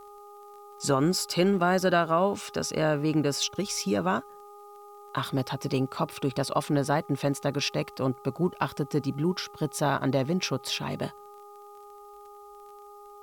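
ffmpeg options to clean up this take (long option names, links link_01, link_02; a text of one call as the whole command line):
ffmpeg -i in.wav -af "adeclick=threshold=4,bandreject=frequency=409.9:width_type=h:width=4,bandreject=frequency=819.8:width_type=h:width=4,bandreject=frequency=1229.7:width_type=h:width=4,agate=range=-21dB:threshold=-40dB" out.wav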